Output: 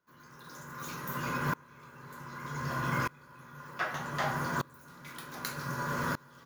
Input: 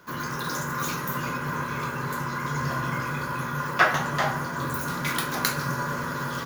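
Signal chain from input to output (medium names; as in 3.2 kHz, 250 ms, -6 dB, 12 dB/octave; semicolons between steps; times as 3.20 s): sawtooth tremolo in dB swelling 0.65 Hz, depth 28 dB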